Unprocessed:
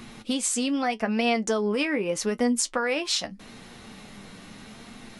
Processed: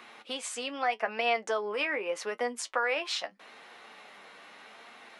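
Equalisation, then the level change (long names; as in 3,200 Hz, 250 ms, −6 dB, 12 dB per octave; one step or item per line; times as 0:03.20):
high-pass filter 200 Hz 6 dB per octave
three-way crossover with the lows and the highs turned down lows −24 dB, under 450 Hz, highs −13 dB, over 3,300 Hz
0.0 dB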